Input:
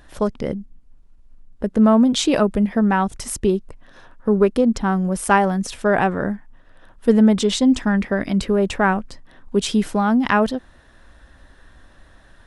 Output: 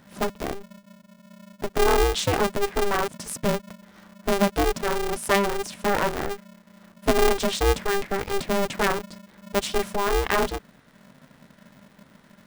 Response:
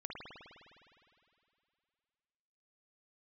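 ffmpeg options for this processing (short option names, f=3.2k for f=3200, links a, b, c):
-af "aeval=exprs='val(0)*sgn(sin(2*PI*200*n/s))':c=same,volume=-5.5dB"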